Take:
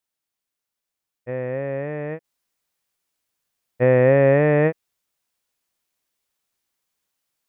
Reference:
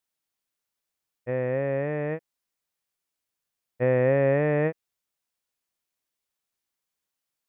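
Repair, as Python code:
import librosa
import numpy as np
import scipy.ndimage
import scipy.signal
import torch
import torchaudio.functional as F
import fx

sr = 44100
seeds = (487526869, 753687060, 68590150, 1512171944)

y = fx.gain(x, sr, db=fx.steps((0.0, 0.0), (2.24, -6.5)))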